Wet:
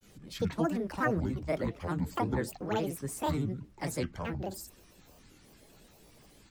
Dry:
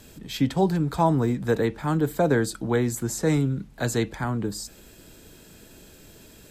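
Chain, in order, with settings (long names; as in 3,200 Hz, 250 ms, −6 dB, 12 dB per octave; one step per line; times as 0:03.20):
granular cloud, grains 26 per second, spray 21 ms, pitch spread up and down by 12 semitones
level −6.5 dB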